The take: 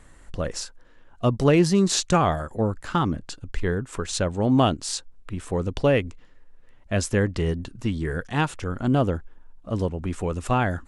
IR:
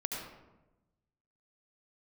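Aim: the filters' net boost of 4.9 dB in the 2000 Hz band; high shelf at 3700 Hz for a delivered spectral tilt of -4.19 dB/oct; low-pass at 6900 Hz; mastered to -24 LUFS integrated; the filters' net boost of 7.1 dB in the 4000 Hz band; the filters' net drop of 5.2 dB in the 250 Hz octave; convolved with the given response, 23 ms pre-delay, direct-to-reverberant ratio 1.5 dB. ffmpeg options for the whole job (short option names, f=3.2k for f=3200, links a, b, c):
-filter_complex "[0:a]lowpass=6.9k,equalizer=f=250:t=o:g=-7.5,equalizer=f=2k:t=o:g=4,highshelf=f=3.7k:g=4.5,equalizer=f=4k:t=o:g=5.5,asplit=2[a][b];[1:a]atrim=start_sample=2205,adelay=23[c];[b][c]afir=irnorm=-1:irlink=0,volume=-4.5dB[d];[a][d]amix=inputs=2:normalize=0,volume=-1dB"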